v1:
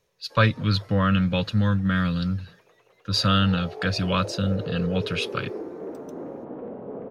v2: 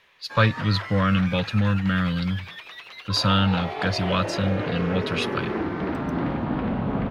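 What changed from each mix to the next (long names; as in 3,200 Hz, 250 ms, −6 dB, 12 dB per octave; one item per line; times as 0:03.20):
background: remove resonant band-pass 460 Hz, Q 3.3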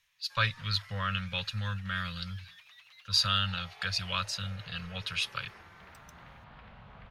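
background −11.5 dB
master: add guitar amp tone stack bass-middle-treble 10-0-10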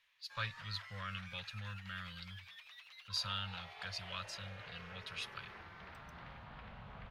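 speech −12.0 dB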